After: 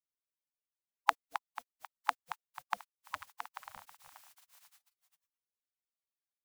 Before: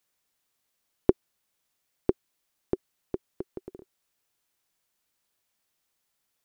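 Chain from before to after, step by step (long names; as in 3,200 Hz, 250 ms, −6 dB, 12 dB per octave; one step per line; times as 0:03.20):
feedback delay that plays each chunk backwards 245 ms, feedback 46%, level −10 dB
gate on every frequency bin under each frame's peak −25 dB weak
level +17 dB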